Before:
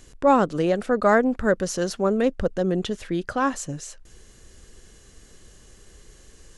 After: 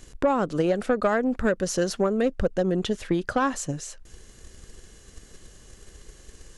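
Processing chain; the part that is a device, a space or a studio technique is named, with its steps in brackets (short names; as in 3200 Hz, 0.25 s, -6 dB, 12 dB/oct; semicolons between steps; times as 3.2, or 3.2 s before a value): drum-bus smash (transient shaper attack +7 dB, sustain +1 dB; compressor 6:1, threshold -17 dBFS, peak gain reduction 9.5 dB; soft clip -12 dBFS, distortion -20 dB)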